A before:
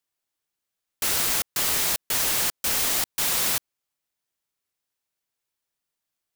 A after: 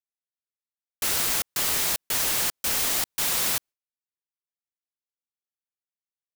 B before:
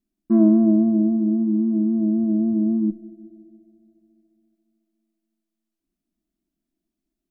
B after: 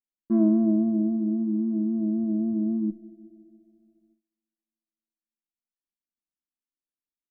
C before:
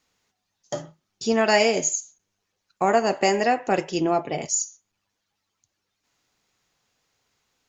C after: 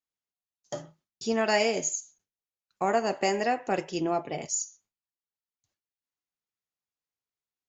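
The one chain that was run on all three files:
gate with hold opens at -52 dBFS; peak normalisation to -12 dBFS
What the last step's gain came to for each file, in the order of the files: -1.0 dB, -5.5 dB, -6.0 dB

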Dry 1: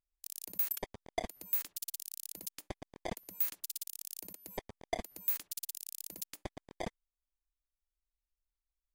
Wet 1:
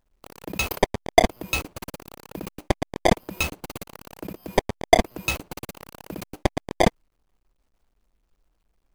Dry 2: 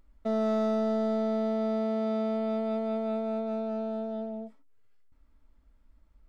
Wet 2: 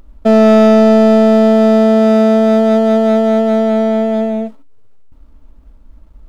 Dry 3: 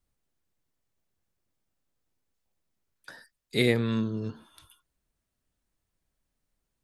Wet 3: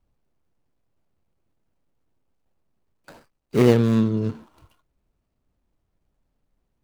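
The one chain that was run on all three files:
median filter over 25 samples; peak normalisation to -3 dBFS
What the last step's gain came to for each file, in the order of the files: +21.5 dB, +20.5 dB, +9.0 dB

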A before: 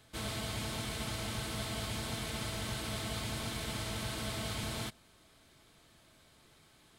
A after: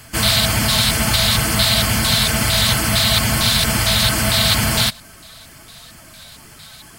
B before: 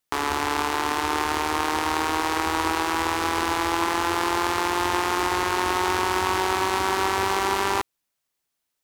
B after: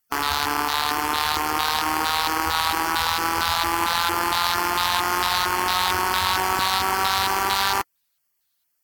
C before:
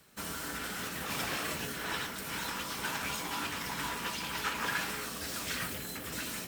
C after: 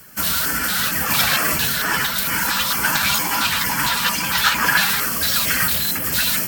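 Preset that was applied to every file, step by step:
coarse spectral quantiser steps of 15 dB; LFO notch square 2.2 Hz 330–3800 Hz; fifteen-band graphic EQ 400 Hz -6 dB, 1.6 kHz +3 dB, 4 kHz +9 dB, 16 kHz +12 dB; peak normalisation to -2 dBFS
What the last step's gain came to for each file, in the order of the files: +21.0 dB, +1.5 dB, +15.0 dB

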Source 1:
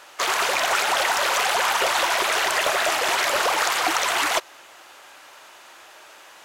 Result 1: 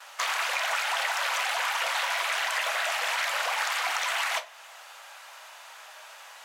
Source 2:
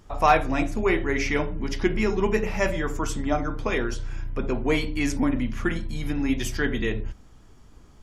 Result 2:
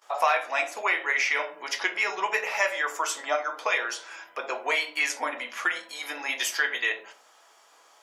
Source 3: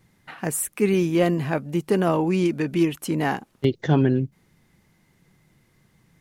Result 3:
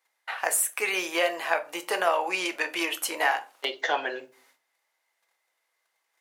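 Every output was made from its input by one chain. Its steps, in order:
gate -56 dBFS, range -16 dB; high-pass 630 Hz 24 dB/octave; dynamic bell 2.2 kHz, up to +5 dB, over -35 dBFS, Q 0.92; compression 2.5:1, threshold -30 dBFS; simulated room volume 170 m³, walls furnished, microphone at 0.67 m; normalise loudness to -27 LUFS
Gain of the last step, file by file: -1.0 dB, +5.5 dB, +6.0 dB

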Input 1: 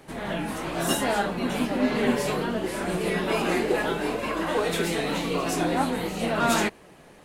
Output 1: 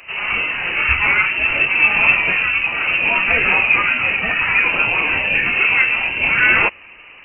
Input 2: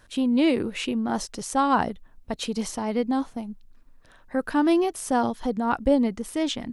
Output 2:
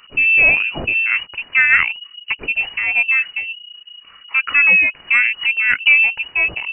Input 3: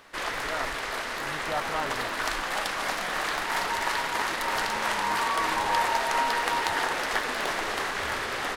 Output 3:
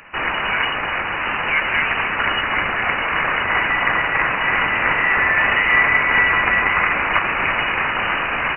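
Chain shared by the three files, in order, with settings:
in parallel at -8.5 dB: hard clipper -15.5 dBFS; on the sum: frequency inversion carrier 2.9 kHz; peak normalisation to -1.5 dBFS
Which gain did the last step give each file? +6.5 dB, +5.5 dB, +7.5 dB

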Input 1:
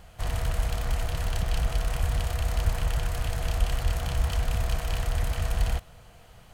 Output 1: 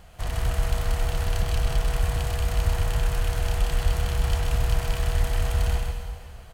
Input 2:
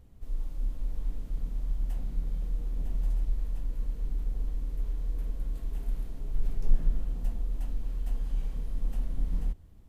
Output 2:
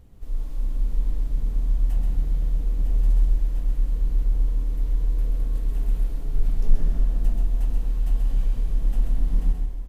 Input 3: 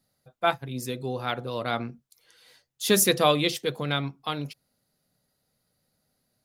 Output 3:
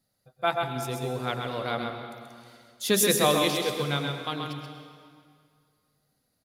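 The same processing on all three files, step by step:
on a send: delay 131 ms -5 dB; on the sum: plate-style reverb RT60 2.1 s, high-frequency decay 0.85×, pre-delay 90 ms, DRR 6.5 dB; normalise loudness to -27 LUFS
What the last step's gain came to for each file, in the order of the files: +0.5 dB, +4.5 dB, -2.5 dB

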